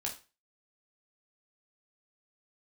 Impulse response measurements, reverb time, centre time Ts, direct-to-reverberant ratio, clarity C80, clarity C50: 0.30 s, 18 ms, −1.0 dB, 16.0 dB, 10.0 dB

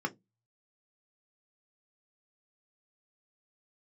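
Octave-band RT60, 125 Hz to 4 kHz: 0.60, 0.30, 0.20, 0.15, 0.10, 0.10 seconds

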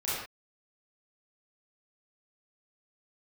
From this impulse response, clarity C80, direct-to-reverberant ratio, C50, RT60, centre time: 2.0 dB, −11.0 dB, −2.5 dB, non-exponential decay, 76 ms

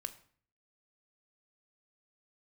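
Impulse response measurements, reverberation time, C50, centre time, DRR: 0.50 s, 15.5 dB, 5 ms, 10.5 dB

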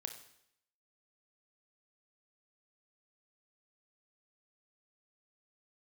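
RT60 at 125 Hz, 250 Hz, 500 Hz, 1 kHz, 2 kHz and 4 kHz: 0.75, 0.75, 0.75, 0.75, 0.75, 0.75 seconds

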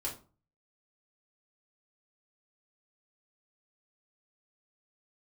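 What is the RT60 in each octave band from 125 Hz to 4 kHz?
0.60, 0.45, 0.40, 0.35, 0.25, 0.25 seconds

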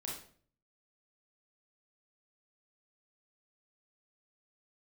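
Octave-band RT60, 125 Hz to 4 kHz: 0.80, 0.60, 0.55, 0.45, 0.45, 0.40 seconds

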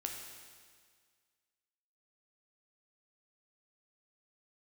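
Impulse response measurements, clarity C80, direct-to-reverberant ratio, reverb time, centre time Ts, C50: 5.0 dB, 1.0 dB, 1.8 s, 59 ms, 3.5 dB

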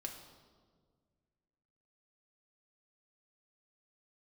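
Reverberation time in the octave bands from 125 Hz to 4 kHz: 2.5, 2.2, 1.9, 1.5, 1.1, 1.1 seconds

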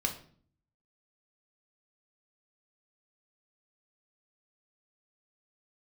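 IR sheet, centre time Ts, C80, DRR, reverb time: 16 ms, 14.5 dB, 2.0 dB, 0.50 s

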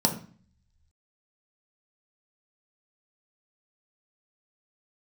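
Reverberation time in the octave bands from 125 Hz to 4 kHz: 1.1, 0.70, 0.40, 0.45, 0.45, 0.40 seconds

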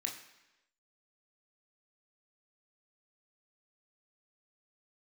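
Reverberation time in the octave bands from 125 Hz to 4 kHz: 0.80, 0.95, 1.0, 1.0, 1.0, 1.0 seconds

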